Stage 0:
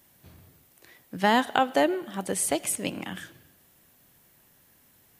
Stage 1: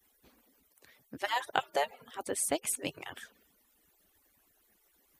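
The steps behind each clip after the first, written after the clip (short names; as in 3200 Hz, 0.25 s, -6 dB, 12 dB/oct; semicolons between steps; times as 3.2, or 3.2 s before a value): median-filter separation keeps percussive; gain -4.5 dB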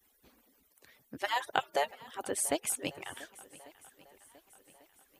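swung echo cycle 1.145 s, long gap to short 1.5:1, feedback 40%, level -20.5 dB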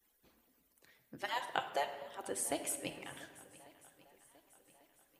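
shoebox room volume 1000 m³, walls mixed, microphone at 0.76 m; gain -6 dB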